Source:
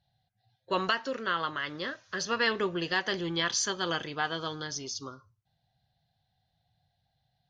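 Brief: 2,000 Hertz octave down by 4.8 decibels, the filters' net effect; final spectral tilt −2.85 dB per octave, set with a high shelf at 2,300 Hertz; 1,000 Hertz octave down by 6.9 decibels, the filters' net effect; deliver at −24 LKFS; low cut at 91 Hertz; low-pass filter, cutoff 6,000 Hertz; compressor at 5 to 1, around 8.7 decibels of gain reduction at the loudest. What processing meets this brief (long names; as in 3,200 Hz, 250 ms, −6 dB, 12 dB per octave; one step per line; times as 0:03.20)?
high-pass filter 91 Hz
low-pass filter 6,000 Hz
parametric band 1,000 Hz −8.5 dB
parametric band 2,000 Hz −4.5 dB
high-shelf EQ 2,300 Hz +3.5 dB
downward compressor 5 to 1, threshold −36 dBFS
level +15.5 dB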